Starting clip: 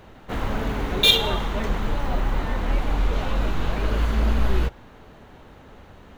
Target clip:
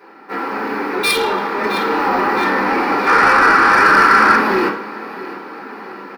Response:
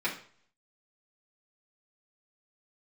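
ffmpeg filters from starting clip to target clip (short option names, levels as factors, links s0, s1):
-filter_complex "[0:a]highpass=f=270:w=0.5412,highpass=f=270:w=1.3066,aecho=1:1:664|1328|1992|2656:0.141|0.0607|0.0261|0.0112,dynaudnorm=f=130:g=9:m=2.82,asettb=1/sr,asplit=3[s0][s1][s2];[s0]atrim=end=3.064[s3];[s1]atrim=start=3.06:end=4.35,asetpts=PTS-STARTPTS,afade=t=in:d=0.004:c=qsin,afade=t=out:st=1.286:d=0.004:c=qsin,equalizer=f=1500:t=o:w=1.2:g=13[s4];[s2]atrim=start=4.346[s5];[s3][s4]acrossfade=d=0.004:c1=hsin:c2=qsin[s6];[s6][s5]acrossfade=d=0.004:c1=qsin:c2=hsin[s7];[1:a]atrim=start_sample=2205[s8];[s7][s8]afir=irnorm=-1:irlink=0,acontrast=77,superequalizer=8b=0.562:10b=1.58:12b=0.562:13b=0.316:15b=0.398,volume=0.501"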